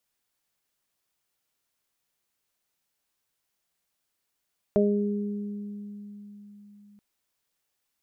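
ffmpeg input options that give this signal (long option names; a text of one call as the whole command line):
ffmpeg -f lavfi -i "aevalsrc='0.0841*pow(10,-3*t/4.39)*sin(2*PI*205*t)+0.1*pow(10,-3*t/1.81)*sin(2*PI*410*t)+0.0891*pow(10,-3*t/0.42)*sin(2*PI*615*t)':duration=2.23:sample_rate=44100" out.wav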